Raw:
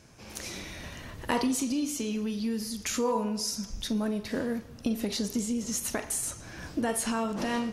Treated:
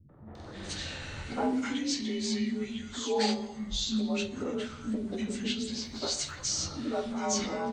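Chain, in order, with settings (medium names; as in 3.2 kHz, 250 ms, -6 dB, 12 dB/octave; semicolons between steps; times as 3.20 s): frequency axis rescaled in octaves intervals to 88%; in parallel at -2.5 dB: compression, threshold -40 dBFS, peak gain reduction 14 dB; on the sum: hum notches 60/120/180/240 Hz; 5.50–6.28 s: short-mantissa float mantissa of 6-bit; three bands offset in time lows, mids, highs 90/350 ms, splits 250/1300 Hz; on a send at -22 dB: reverberation RT60 1.0 s, pre-delay 3 ms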